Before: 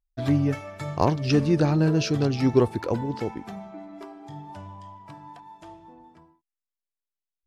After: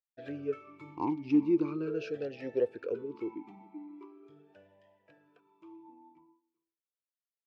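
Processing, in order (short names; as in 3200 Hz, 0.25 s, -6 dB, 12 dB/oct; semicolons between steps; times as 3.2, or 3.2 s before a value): outdoor echo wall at 67 m, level -25 dB; vowel sweep e-u 0.41 Hz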